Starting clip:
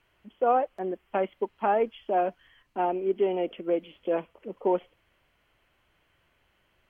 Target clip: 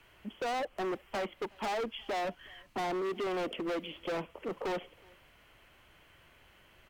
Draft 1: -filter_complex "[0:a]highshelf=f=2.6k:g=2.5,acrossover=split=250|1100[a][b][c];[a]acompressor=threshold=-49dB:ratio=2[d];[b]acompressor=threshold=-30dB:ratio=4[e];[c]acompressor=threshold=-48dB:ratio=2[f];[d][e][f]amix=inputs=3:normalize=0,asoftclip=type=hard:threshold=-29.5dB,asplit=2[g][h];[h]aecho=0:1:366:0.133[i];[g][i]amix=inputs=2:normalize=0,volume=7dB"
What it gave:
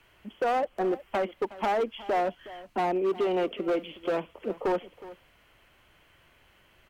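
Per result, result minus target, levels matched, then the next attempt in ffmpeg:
echo-to-direct +10 dB; hard clip: distortion -6 dB
-filter_complex "[0:a]highshelf=f=2.6k:g=2.5,acrossover=split=250|1100[a][b][c];[a]acompressor=threshold=-49dB:ratio=2[d];[b]acompressor=threshold=-30dB:ratio=4[e];[c]acompressor=threshold=-48dB:ratio=2[f];[d][e][f]amix=inputs=3:normalize=0,asoftclip=type=hard:threshold=-29.5dB,asplit=2[g][h];[h]aecho=0:1:366:0.0422[i];[g][i]amix=inputs=2:normalize=0,volume=7dB"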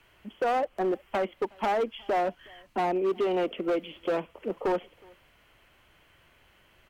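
hard clip: distortion -6 dB
-filter_complex "[0:a]highshelf=f=2.6k:g=2.5,acrossover=split=250|1100[a][b][c];[a]acompressor=threshold=-49dB:ratio=2[d];[b]acompressor=threshold=-30dB:ratio=4[e];[c]acompressor=threshold=-48dB:ratio=2[f];[d][e][f]amix=inputs=3:normalize=0,asoftclip=type=hard:threshold=-39dB,asplit=2[g][h];[h]aecho=0:1:366:0.0422[i];[g][i]amix=inputs=2:normalize=0,volume=7dB"

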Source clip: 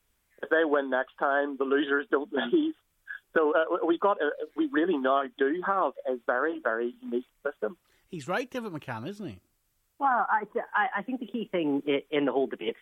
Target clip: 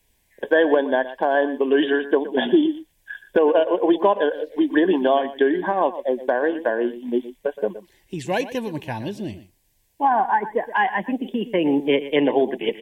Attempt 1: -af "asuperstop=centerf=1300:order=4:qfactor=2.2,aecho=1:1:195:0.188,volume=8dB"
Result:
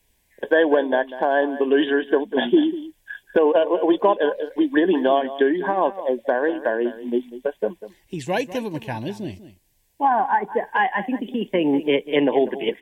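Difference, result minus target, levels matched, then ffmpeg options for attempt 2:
echo 75 ms late
-af "asuperstop=centerf=1300:order=4:qfactor=2.2,aecho=1:1:120:0.188,volume=8dB"

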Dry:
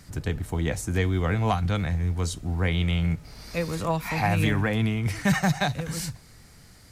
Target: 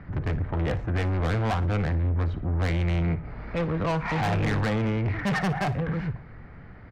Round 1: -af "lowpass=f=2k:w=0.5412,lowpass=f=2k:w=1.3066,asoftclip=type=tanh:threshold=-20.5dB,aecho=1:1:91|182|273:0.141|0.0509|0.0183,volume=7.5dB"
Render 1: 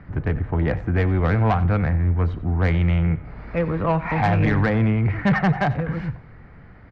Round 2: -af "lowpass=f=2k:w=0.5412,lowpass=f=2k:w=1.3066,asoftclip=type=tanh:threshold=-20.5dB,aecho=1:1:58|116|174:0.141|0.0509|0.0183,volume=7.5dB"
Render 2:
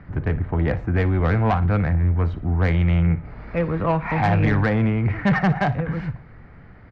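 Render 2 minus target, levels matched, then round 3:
soft clip: distortion -8 dB
-af "lowpass=f=2k:w=0.5412,lowpass=f=2k:w=1.3066,asoftclip=type=tanh:threshold=-30.5dB,aecho=1:1:58|116|174:0.141|0.0509|0.0183,volume=7.5dB"

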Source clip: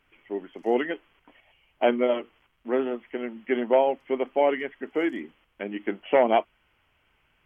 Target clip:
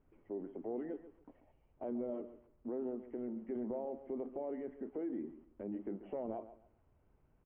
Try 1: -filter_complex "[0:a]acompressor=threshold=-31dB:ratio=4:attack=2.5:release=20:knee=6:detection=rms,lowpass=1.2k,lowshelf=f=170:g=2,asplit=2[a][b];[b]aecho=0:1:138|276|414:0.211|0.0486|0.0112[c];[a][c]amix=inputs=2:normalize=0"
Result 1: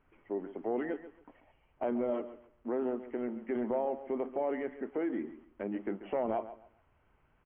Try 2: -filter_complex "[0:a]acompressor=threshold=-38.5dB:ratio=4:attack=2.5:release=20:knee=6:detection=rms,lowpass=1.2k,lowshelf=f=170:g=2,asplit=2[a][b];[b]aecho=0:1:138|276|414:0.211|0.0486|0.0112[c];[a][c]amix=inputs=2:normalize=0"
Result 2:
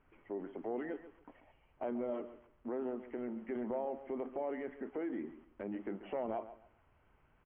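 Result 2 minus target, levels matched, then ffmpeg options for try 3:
1000 Hz band +5.0 dB
-filter_complex "[0:a]acompressor=threshold=-38.5dB:ratio=4:attack=2.5:release=20:knee=6:detection=rms,lowpass=550,lowshelf=f=170:g=2,asplit=2[a][b];[b]aecho=0:1:138|276|414:0.211|0.0486|0.0112[c];[a][c]amix=inputs=2:normalize=0"

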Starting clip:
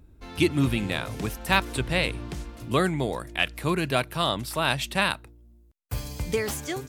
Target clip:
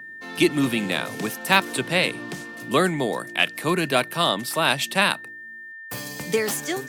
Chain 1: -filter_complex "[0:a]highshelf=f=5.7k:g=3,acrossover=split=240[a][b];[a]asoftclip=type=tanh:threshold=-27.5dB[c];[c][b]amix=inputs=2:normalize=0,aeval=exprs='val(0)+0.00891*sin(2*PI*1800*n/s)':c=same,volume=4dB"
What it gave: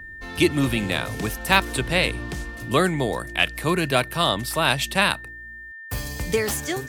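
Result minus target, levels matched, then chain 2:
125 Hz band +4.5 dB
-filter_complex "[0:a]highpass=f=160:w=0.5412,highpass=f=160:w=1.3066,highshelf=f=5.7k:g=3,acrossover=split=240[a][b];[a]asoftclip=type=tanh:threshold=-27.5dB[c];[c][b]amix=inputs=2:normalize=0,aeval=exprs='val(0)+0.00891*sin(2*PI*1800*n/s)':c=same,volume=4dB"

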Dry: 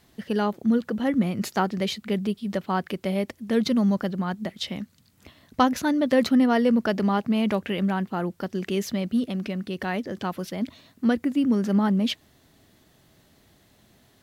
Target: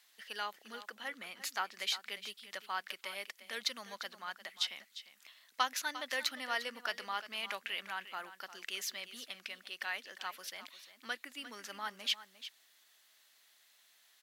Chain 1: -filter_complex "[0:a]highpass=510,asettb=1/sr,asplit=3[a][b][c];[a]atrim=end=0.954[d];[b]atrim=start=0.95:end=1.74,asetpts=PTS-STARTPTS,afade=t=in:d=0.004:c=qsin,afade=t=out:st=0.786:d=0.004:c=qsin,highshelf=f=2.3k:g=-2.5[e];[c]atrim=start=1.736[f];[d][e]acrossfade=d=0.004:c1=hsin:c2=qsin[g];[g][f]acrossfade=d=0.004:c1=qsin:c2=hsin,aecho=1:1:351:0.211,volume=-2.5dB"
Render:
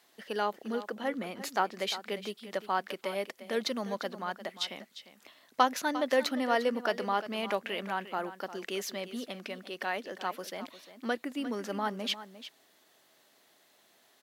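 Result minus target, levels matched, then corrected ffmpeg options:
500 Hz band +10.5 dB
-filter_complex "[0:a]highpass=1.6k,asettb=1/sr,asplit=3[a][b][c];[a]atrim=end=0.954[d];[b]atrim=start=0.95:end=1.74,asetpts=PTS-STARTPTS,afade=t=in:d=0.004:c=qsin,afade=t=out:st=0.786:d=0.004:c=qsin,highshelf=f=2.3k:g=-2.5[e];[c]atrim=start=1.736[f];[d][e]acrossfade=d=0.004:c1=hsin:c2=qsin[g];[g][f]acrossfade=d=0.004:c1=qsin:c2=hsin,aecho=1:1:351:0.211,volume=-2.5dB"

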